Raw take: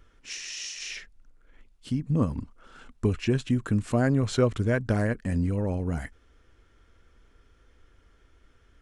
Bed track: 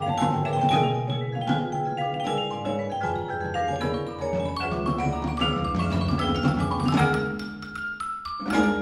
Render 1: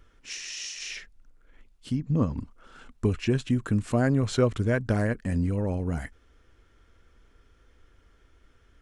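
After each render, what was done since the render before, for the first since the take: 1.96–2.36 s: Chebyshev low-pass 7.2 kHz, order 5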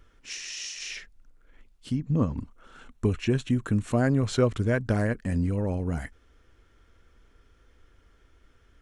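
1.94–3.92 s: band-stop 4.9 kHz, Q 8.7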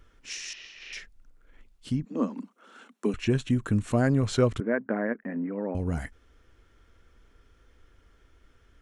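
0.53–0.93 s: distance through air 320 m; 2.05–3.14 s: steep high-pass 190 Hz 96 dB/octave; 4.60–5.75 s: elliptic band-pass 220–2000 Hz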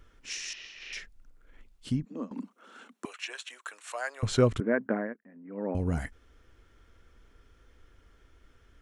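1.89–2.31 s: fade out linear, to -17.5 dB; 3.05–4.23 s: Bessel high-pass 1 kHz, order 6; 4.92–5.69 s: dip -20 dB, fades 0.25 s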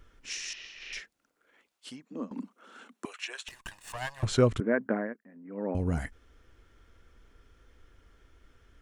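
0.99–2.10 s: high-pass 230 Hz -> 710 Hz; 3.48–4.25 s: comb filter that takes the minimum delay 1.1 ms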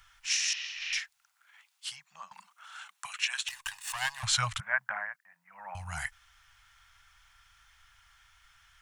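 elliptic band-stop 140–790 Hz, stop band 60 dB; tilt shelf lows -9.5 dB, about 640 Hz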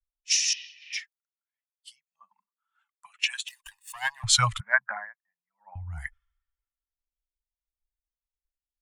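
expander on every frequency bin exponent 1.5; three bands expanded up and down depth 100%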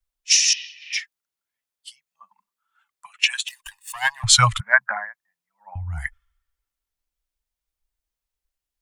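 trim +7.5 dB; peak limiter -1 dBFS, peak gain reduction 2.5 dB

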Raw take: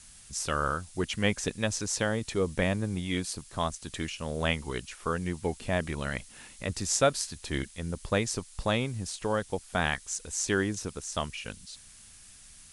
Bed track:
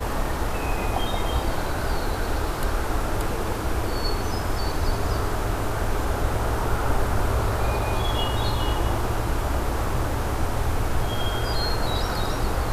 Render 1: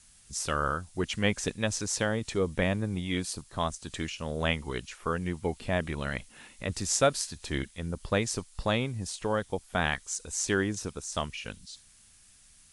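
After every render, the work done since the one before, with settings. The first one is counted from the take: noise print and reduce 6 dB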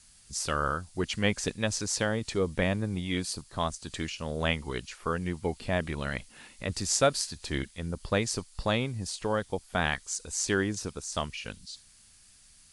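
peaking EQ 4.6 kHz +5.5 dB 0.25 oct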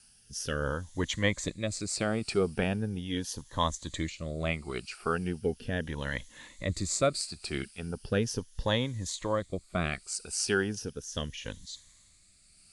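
drifting ripple filter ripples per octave 1.1, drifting +0.38 Hz, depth 10 dB; rotary cabinet horn 0.75 Hz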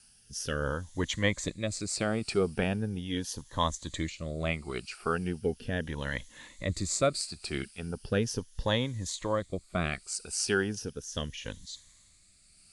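no audible change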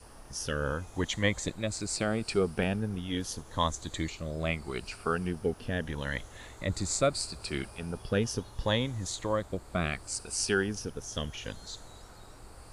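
add bed track -26 dB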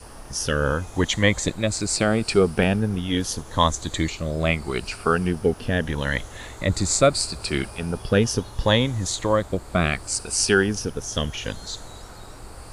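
trim +9.5 dB; peak limiter -1 dBFS, peak gain reduction 1.5 dB

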